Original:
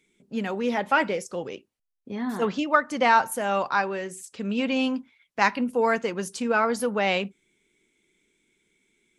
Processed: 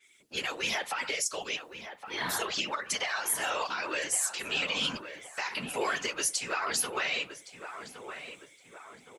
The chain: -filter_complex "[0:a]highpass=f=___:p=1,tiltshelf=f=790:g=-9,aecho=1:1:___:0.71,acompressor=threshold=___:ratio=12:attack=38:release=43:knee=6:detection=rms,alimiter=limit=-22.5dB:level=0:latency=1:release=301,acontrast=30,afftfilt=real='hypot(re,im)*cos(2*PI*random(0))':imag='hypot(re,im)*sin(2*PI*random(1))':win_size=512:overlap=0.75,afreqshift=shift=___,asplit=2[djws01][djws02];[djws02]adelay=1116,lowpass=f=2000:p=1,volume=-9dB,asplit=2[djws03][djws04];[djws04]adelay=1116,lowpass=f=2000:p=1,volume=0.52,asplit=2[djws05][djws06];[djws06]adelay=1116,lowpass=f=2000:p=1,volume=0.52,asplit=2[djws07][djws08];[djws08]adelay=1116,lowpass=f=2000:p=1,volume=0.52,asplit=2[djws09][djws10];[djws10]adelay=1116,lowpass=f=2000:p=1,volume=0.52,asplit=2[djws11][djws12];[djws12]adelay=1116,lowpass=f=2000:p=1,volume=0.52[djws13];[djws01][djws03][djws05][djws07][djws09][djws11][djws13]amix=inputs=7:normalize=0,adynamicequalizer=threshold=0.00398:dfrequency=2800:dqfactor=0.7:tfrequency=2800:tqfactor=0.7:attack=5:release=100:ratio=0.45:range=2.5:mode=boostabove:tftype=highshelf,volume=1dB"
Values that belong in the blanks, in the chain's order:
580, 7.1, -28dB, -25